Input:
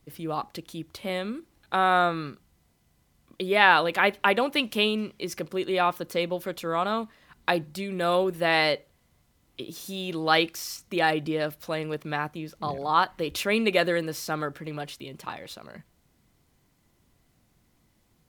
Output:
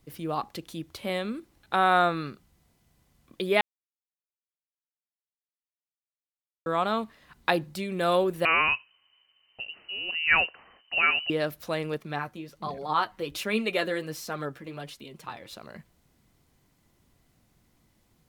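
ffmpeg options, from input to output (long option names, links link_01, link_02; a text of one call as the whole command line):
ffmpeg -i in.wav -filter_complex "[0:a]asettb=1/sr,asplit=3[link_01][link_02][link_03];[link_01]atrim=end=8.454[link_04];[link_02]atrim=start=8.45:end=11.3,asetpts=PTS-STARTPTS,afade=type=in:duration=0.004:curve=qsin,afade=type=out:start_time=2.846:duration=0.004:curve=qsin,lowpass=frequency=2600:width_type=q:width=0.5098,lowpass=frequency=2600:width_type=q:width=0.6013,lowpass=frequency=2600:width_type=q:width=0.9,lowpass=frequency=2600:width_type=q:width=2.563,afreqshift=-3100[link_05];[link_03]atrim=start=11.296[link_06];[link_04][link_05]acrossfade=duration=0.004:curve1=hsin:curve2=qsin[link_07];[link_07][link_06]acrossfade=duration=0.004:curve1=qsin:curve2=hsin,asettb=1/sr,asplit=3[link_08][link_09][link_10];[link_08]atrim=end=11.984[link_11];[link_09]atrim=start=11.98:end=15.53,asetpts=PTS-STARTPTS,afade=type=in:duration=0.004:curve=qsin,afade=type=out:start_time=3.546:duration=0.004:curve=qsin,flanger=delay=3.9:depth=6:regen=35:speed=1.3:shape=triangular[link_12];[link_10]atrim=start=15.526[link_13];[link_11][link_12]acrossfade=duration=0.004:curve1=hsin:curve2=qsin[link_14];[link_14][link_13]acrossfade=duration=0.004:curve1=qsin:curve2=hsin,asplit=3[link_15][link_16][link_17];[link_15]atrim=end=3.61,asetpts=PTS-STARTPTS,afade=type=out:start_time=3.606:duration=0.004:curve=hsin[link_18];[link_16]atrim=start=3.61:end=6.66,asetpts=PTS-STARTPTS,volume=0[link_19];[link_17]atrim=start=6.66,asetpts=PTS-STARTPTS,afade=type=in:duration=0.004:curve=hsin[link_20];[link_18][link_19][link_20]concat=n=3:v=0:a=1" out.wav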